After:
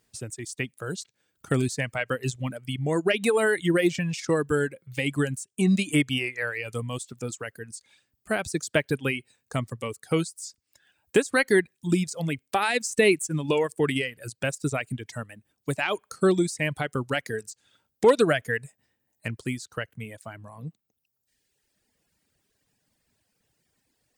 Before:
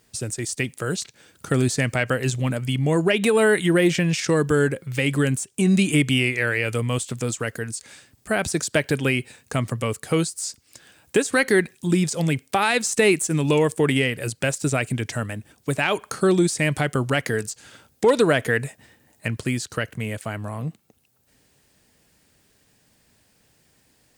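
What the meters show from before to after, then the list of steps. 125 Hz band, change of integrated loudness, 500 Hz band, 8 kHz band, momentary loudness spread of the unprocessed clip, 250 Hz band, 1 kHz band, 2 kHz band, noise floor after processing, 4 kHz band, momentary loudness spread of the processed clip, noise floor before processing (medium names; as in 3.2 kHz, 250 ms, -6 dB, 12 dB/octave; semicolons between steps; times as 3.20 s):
-7.0 dB, -4.0 dB, -3.5 dB, -7.5 dB, 11 LU, -5.0 dB, -4.0 dB, -4.5 dB, -79 dBFS, -5.0 dB, 16 LU, -63 dBFS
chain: reverb removal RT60 1.6 s; upward expansion 1.5:1, over -31 dBFS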